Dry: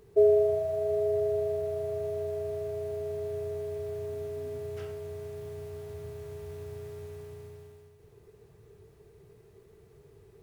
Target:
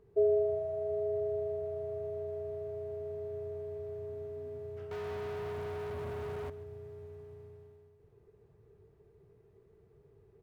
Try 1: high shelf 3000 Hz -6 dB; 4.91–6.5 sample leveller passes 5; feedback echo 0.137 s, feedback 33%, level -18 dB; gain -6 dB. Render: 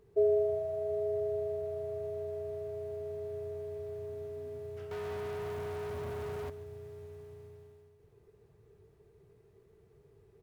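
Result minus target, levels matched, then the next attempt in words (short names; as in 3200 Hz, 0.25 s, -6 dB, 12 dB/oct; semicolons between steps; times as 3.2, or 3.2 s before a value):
8000 Hz band +5.5 dB
high shelf 3000 Hz -16.5 dB; 4.91–6.5 sample leveller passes 5; feedback echo 0.137 s, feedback 33%, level -18 dB; gain -6 dB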